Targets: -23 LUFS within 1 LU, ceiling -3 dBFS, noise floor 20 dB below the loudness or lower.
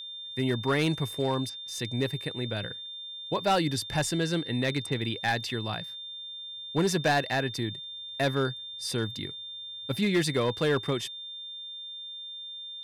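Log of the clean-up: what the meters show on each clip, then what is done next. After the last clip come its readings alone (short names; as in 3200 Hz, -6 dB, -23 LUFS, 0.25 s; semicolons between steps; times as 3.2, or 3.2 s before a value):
clipped 0.5%; flat tops at -19.0 dBFS; steady tone 3600 Hz; tone level -38 dBFS; loudness -30.0 LUFS; peak -19.0 dBFS; loudness target -23.0 LUFS
-> clip repair -19 dBFS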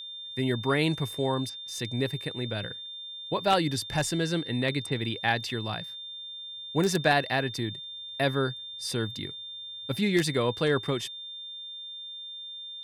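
clipped 0.0%; steady tone 3600 Hz; tone level -38 dBFS
-> notch 3600 Hz, Q 30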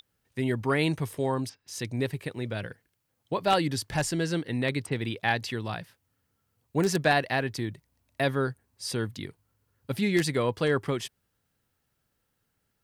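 steady tone none; loudness -29.0 LUFS; peak -9.5 dBFS; loudness target -23.0 LUFS
-> gain +6 dB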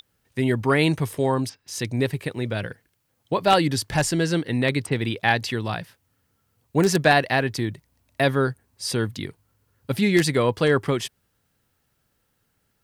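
loudness -23.0 LUFS; peak -3.5 dBFS; noise floor -71 dBFS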